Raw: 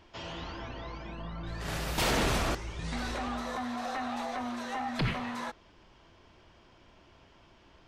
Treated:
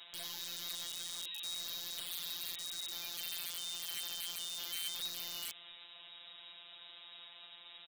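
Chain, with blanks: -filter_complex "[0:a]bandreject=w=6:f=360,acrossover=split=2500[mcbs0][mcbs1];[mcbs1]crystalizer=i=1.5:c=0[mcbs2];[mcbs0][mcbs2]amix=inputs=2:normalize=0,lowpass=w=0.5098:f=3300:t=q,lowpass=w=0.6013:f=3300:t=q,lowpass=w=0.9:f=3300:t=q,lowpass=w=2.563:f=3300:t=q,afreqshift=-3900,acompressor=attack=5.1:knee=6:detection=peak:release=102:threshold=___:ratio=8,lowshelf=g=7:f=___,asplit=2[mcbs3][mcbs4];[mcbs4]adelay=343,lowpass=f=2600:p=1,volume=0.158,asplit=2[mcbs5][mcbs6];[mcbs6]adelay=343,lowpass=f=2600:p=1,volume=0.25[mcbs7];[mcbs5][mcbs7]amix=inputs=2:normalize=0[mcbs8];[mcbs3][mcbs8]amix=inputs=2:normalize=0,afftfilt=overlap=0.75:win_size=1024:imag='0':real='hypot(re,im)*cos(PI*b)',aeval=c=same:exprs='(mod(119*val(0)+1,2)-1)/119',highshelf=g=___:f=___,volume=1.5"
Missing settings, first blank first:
0.00562, 460, 9.5, 2900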